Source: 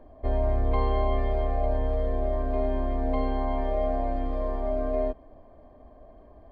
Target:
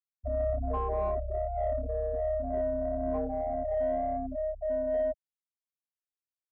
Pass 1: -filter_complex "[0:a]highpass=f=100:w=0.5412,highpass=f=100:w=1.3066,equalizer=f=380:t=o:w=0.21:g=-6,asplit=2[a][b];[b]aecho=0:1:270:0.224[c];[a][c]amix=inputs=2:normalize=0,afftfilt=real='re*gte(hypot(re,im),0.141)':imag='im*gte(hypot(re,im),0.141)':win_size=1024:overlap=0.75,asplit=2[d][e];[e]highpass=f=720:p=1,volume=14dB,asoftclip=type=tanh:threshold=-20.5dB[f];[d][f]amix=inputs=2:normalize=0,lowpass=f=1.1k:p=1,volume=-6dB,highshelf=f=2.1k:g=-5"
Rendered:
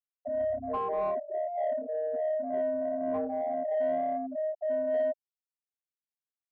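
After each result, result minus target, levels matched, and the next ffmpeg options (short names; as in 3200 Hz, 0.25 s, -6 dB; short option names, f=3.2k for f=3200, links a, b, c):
125 Hz band -19.0 dB; 4000 Hz band +6.0 dB
-filter_complex "[0:a]highpass=f=43:w=0.5412,highpass=f=43:w=1.3066,equalizer=f=380:t=o:w=0.21:g=-6,asplit=2[a][b];[b]aecho=0:1:270:0.224[c];[a][c]amix=inputs=2:normalize=0,afftfilt=real='re*gte(hypot(re,im),0.141)':imag='im*gte(hypot(re,im),0.141)':win_size=1024:overlap=0.75,asplit=2[d][e];[e]highpass=f=720:p=1,volume=14dB,asoftclip=type=tanh:threshold=-20.5dB[f];[d][f]amix=inputs=2:normalize=0,lowpass=f=1.1k:p=1,volume=-6dB,highshelf=f=2.1k:g=-5"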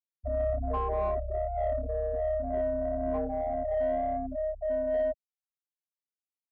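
4000 Hz band +5.5 dB
-filter_complex "[0:a]highpass=f=43:w=0.5412,highpass=f=43:w=1.3066,equalizer=f=380:t=o:w=0.21:g=-6,asplit=2[a][b];[b]aecho=0:1:270:0.224[c];[a][c]amix=inputs=2:normalize=0,afftfilt=real='re*gte(hypot(re,im),0.141)':imag='im*gte(hypot(re,im),0.141)':win_size=1024:overlap=0.75,asplit=2[d][e];[e]highpass=f=720:p=1,volume=14dB,asoftclip=type=tanh:threshold=-20.5dB[f];[d][f]amix=inputs=2:normalize=0,lowpass=f=1.1k:p=1,volume=-6dB,highshelf=f=2.1k:g=-14.5"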